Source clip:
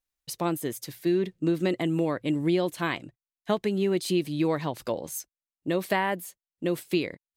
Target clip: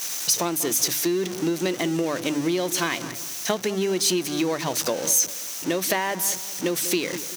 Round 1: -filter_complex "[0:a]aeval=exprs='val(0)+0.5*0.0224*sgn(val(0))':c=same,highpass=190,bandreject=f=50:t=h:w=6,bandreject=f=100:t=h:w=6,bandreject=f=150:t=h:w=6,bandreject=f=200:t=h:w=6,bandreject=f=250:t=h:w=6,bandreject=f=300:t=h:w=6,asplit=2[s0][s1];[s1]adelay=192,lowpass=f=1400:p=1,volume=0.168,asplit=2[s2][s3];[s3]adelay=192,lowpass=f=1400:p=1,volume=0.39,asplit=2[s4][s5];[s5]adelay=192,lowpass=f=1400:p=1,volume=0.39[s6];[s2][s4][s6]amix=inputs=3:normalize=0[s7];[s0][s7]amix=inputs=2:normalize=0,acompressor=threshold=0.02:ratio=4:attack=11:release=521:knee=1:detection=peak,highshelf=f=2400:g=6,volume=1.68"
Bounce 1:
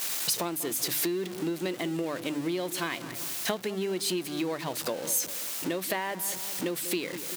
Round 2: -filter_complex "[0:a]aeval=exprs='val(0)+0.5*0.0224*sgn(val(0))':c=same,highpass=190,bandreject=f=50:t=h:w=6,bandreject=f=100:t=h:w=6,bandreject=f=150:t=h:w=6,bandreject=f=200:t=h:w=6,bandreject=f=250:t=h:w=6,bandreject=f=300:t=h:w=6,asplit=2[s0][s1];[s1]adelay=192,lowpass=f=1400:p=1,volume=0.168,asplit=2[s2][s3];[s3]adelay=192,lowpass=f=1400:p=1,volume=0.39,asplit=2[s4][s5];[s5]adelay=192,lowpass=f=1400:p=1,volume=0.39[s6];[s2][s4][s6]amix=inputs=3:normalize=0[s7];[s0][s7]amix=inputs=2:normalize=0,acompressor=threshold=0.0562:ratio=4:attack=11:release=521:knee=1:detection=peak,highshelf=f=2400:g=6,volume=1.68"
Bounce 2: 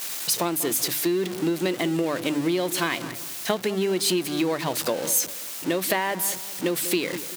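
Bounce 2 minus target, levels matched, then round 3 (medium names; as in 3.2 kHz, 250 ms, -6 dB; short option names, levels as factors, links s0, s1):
8 kHz band -3.0 dB
-filter_complex "[0:a]aeval=exprs='val(0)+0.5*0.0224*sgn(val(0))':c=same,highpass=190,equalizer=f=6000:t=o:w=0.3:g=11,bandreject=f=50:t=h:w=6,bandreject=f=100:t=h:w=6,bandreject=f=150:t=h:w=6,bandreject=f=200:t=h:w=6,bandreject=f=250:t=h:w=6,bandreject=f=300:t=h:w=6,asplit=2[s0][s1];[s1]adelay=192,lowpass=f=1400:p=1,volume=0.168,asplit=2[s2][s3];[s3]adelay=192,lowpass=f=1400:p=1,volume=0.39,asplit=2[s4][s5];[s5]adelay=192,lowpass=f=1400:p=1,volume=0.39[s6];[s2][s4][s6]amix=inputs=3:normalize=0[s7];[s0][s7]amix=inputs=2:normalize=0,acompressor=threshold=0.0562:ratio=4:attack=11:release=521:knee=1:detection=peak,highshelf=f=2400:g=6,volume=1.68"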